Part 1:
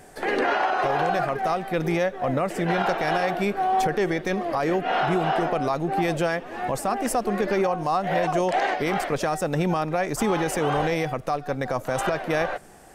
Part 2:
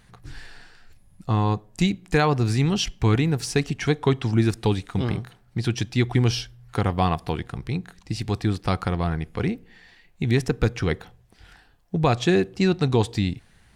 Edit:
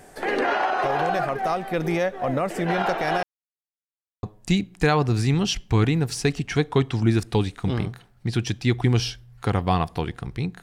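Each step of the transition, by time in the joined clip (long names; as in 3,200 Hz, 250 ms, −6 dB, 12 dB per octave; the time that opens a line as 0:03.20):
part 1
0:03.23–0:04.23: silence
0:04.23: continue with part 2 from 0:01.54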